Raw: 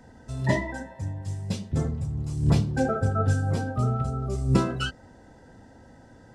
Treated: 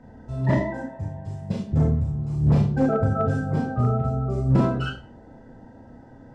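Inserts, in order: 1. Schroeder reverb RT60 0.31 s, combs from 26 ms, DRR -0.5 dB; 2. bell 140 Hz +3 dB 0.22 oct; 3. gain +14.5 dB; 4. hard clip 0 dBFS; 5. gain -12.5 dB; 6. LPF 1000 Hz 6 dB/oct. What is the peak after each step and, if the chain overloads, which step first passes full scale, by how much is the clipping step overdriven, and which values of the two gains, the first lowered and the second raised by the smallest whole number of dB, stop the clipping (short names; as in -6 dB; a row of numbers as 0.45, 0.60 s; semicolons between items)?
-7.5, -7.0, +7.5, 0.0, -12.5, -12.5 dBFS; step 3, 7.5 dB; step 3 +6.5 dB, step 5 -4.5 dB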